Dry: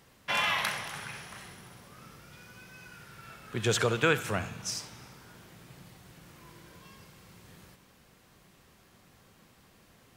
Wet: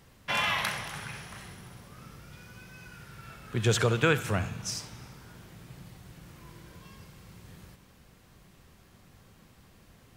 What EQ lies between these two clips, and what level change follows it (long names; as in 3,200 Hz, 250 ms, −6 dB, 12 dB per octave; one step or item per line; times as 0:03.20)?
low-shelf EQ 140 Hz +10 dB
0.0 dB